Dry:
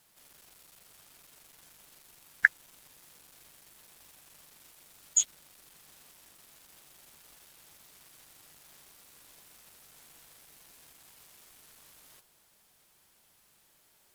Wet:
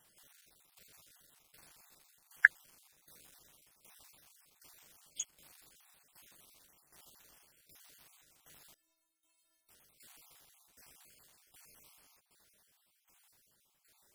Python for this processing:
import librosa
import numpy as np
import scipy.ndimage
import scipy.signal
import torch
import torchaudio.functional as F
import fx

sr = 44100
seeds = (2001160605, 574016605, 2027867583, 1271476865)

y = fx.spec_dropout(x, sr, seeds[0], share_pct=36)
y = fx.stiff_resonator(y, sr, f0_hz=320.0, decay_s=0.48, stiffness=0.008, at=(8.74, 9.69))
y = fx.tremolo_shape(y, sr, shape='saw_down', hz=1.3, depth_pct=75)